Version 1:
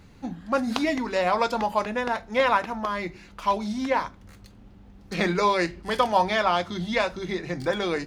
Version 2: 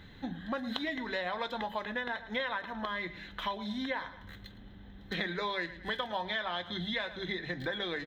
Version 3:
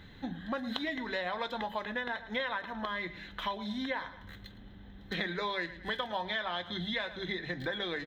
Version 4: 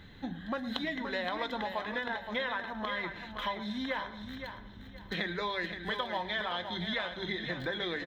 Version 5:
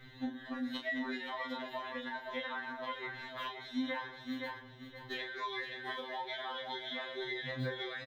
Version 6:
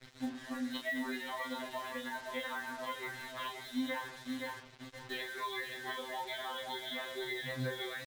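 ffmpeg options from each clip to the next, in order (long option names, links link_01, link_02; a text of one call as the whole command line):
ffmpeg -i in.wav -af "superequalizer=11b=2.82:13b=3.16:14b=0.355:15b=0.355:16b=0.282,aecho=1:1:110|220:0.126|0.034,acompressor=threshold=-32dB:ratio=4,volume=-2dB" out.wav
ffmpeg -i in.wav -af anull out.wav
ffmpeg -i in.wav -af "aecho=1:1:521|1042|1563:0.398|0.111|0.0312" out.wav
ffmpeg -i in.wav -filter_complex "[0:a]acompressor=threshold=-36dB:ratio=6,asplit=2[link_01][link_02];[link_02]adelay=32,volume=-6dB[link_03];[link_01][link_03]amix=inputs=2:normalize=0,afftfilt=real='re*2.45*eq(mod(b,6),0)':imag='im*2.45*eq(mod(b,6),0)':win_size=2048:overlap=0.75,volume=1dB" out.wav
ffmpeg -i in.wav -af "acrusher=bits=7:mix=0:aa=0.5" out.wav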